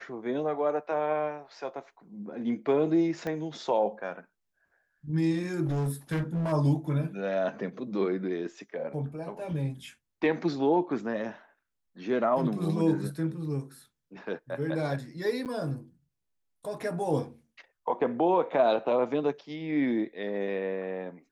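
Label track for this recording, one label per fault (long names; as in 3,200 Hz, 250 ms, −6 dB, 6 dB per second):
3.270000	3.270000	click −21 dBFS
5.650000	6.530000	clipping −26 dBFS
15.450000	15.460000	drop-out 8.4 ms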